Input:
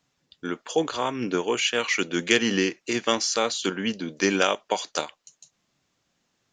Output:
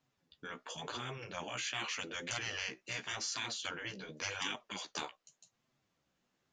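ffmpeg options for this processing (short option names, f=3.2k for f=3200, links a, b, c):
-af "highshelf=f=3.7k:g=-8,afftfilt=real='re*lt(hypot(re,im),0.112)':imag='im*lt(hypot(re,im),0.112)':win_size=1024:overlap=0.75,flanger=delay=7.7:depth=8.2:regen=12:speed=0.88:shape=sinusoidal,volume=-2.5dB"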